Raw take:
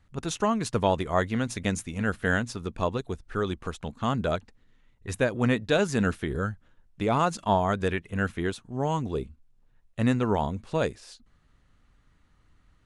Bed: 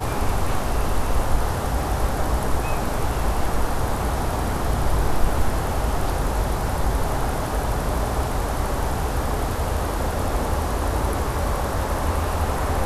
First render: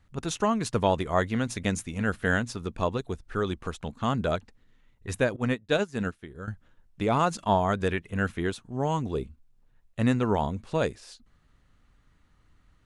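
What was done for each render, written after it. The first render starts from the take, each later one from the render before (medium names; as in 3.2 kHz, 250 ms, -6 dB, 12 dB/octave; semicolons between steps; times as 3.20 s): 5.36–6.48 s: upward expansion 2.5:1, over -32 dBFS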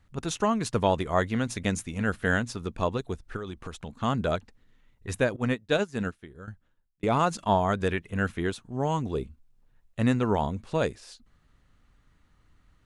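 3.36–3.97 s: compression, threshold -32 dBFS; 5.97–7.03 s: fade out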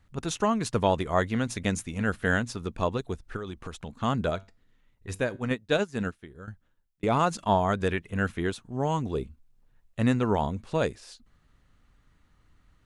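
4.30–5.51 s: feedback comb 96 Hz, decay 0.28 s, mix 40%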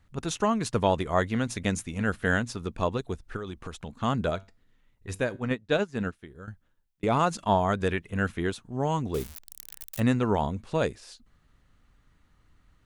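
5.40–6.13 s: treble shelf 7.3 kHz -11 dB; 9.14–10.00 s: zero-crossing glitches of -25.5 dBFS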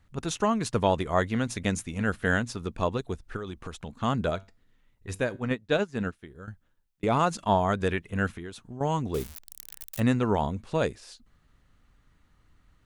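8.32–8.81 s: compression, threshold -35 dBFS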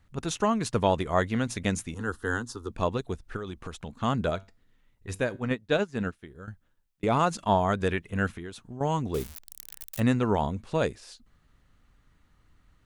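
1.94–2.70 s: static phaser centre 620 Hz, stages 6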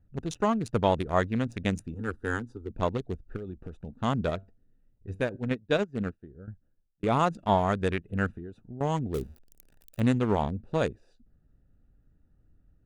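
local Wiener filter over 41 samples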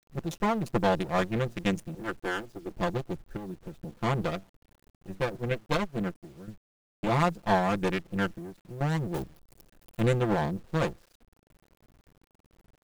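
comb filter that takes the minimum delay 5.8 ms; word length cut 10-bit, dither none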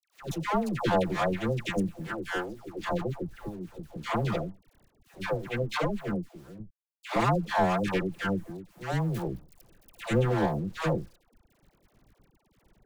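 phase dispersion lows, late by 128 ms, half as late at 770 Hz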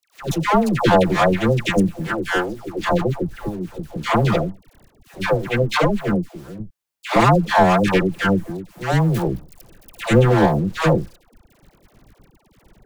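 trim +11.5 dB; peak limiter -3 dBFS, peak gain reduction 2 dB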